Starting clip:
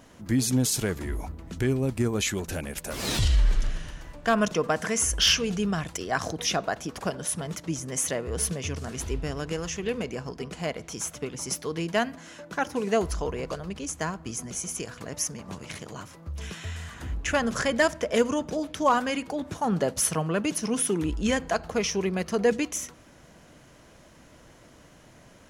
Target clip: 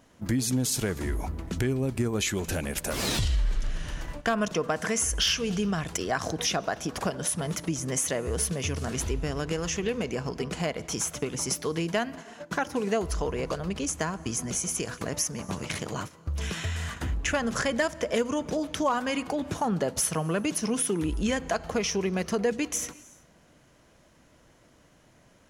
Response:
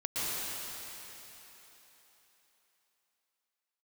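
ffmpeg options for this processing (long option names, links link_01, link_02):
-filter_complex "[0:a]agate=range=-15dB:threshold=-41dB:ratio=16:detection=peak,asplit=2[link_01][link_02];[1:a]atrim=start_sample=2205,afade=type=out:start_time=0.44:duration=0.01,atrim=end_sample=19845[link_03];[link_02][link_03]afir=irnorm=-1:irlink=0,volume=-30.5dB[link_04];[link_01][link_04]amix=inputs=2:normalize=0,acompressor=threshold=-38dB:ratio=2.5,volume=8.5dB"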